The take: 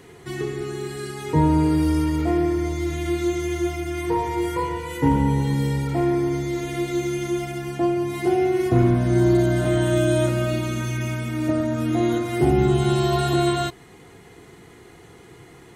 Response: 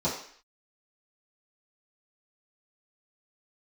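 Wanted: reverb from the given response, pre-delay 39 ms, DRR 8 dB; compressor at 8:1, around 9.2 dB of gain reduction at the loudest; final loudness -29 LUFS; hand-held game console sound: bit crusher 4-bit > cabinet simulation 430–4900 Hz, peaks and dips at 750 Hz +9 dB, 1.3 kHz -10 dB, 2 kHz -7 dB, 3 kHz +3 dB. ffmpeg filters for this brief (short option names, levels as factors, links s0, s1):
-filter_complex "[0:a]acompressor=threshold=0.0708:ratio=8,asplit=2[s0][s1];[1:a]atrim=start_sample=2205,adelay=39[s2];[s1][s2]afir=irnorm=-1:irlink=0,volume=0.126[s3];[s0][s3]amix=inputs=2:normalize=0,acrusher=bits=3:mix=0:aa=0.000001,highpass=430,equalizer=f=750:t=q:w=4:g=9,equalizer=f=1300:t=q:w=4:g=-10,equalizer=f=2000:t=q:w=4:g=-7,equalizer=f=3000:t=q:w=4:g=3,lowpass=f=4900:w=0.5412,lowpass=f=4900:w=1.3066,volume=0.708"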